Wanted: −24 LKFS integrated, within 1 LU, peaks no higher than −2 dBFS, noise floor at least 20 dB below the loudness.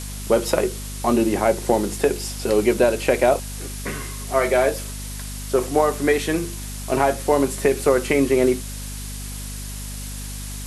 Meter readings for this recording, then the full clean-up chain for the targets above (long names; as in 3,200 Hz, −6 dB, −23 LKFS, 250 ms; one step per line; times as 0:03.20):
mains hum 50 Hz; hum harmonics up to 250 Hz; level of the hum −30 dBFS; background noise floor −32 dBFS; target noise floor −41 dBFS; integrated loudness −21.0 LKFS; sample peak −4.5 dBFS; target loudness −24.0 LKFS
→ mains-hum notches 50/100/150/200/250 Hz
broadband denoise 9 dB, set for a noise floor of −32 dBFS
level −3 dB